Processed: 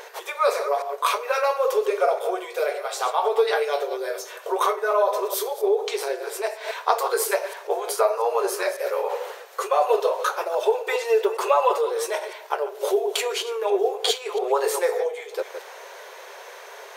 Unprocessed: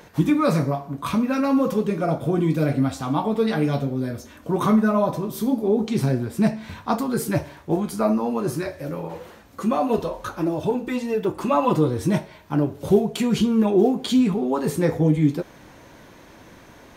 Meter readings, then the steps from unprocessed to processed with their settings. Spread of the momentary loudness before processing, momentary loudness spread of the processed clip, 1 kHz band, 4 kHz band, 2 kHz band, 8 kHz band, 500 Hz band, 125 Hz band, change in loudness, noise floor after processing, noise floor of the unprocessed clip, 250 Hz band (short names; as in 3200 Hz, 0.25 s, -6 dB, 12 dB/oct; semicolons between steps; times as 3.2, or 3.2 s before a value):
9 LU, 11 LU, +4.0 dB, +5.5 dB, +4.5 dB, +6.0 dB, +2.5 dB, under -40 dB, -1.5 dB, -42 dBFS, -48 dBFS, under -15 dB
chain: reverse delay 0.137 s, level -12 dB; compressor, threshold -22 dBFS, peak gain reduction 11 dB; brick-wall FIR high-pass 380 Hz; gain +8 dB